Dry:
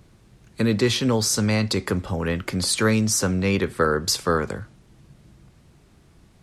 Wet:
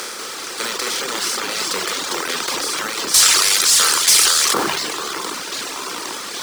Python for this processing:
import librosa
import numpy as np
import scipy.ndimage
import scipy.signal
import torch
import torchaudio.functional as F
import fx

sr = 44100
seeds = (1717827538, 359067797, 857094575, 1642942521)

y = fx.bin_compress(x, sr, power=0.2)
y = scipy.signal.sosfilt(scipy.signal.butter(2, 660.0, 'highpass', fs=sr, output='sos'), y)
y = fx.echo_pitch(y, sr, ms=192, semitones=-2, count=3, db_per_echo=-3.0)
y = fx.tilt_eq(y, sr, slope=4.5, at=(3.14, 4.54))
y = fx.dereverb_blind(y, sr, rt60_s=1.2)
y = fx.quant_companded(y, sr, bits=4)
y = fx.sustainer(y, sr, db_per_s=21.0)
y = F.gain(torch.from_numpy(y), -6.5).numpy()